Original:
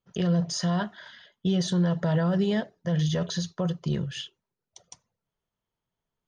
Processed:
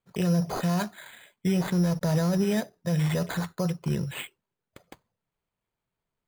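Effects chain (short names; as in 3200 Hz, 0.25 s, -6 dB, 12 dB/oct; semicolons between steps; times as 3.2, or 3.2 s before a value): sample-and-hold 8×; 1.56–2.45 backlash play -35.5 dBFS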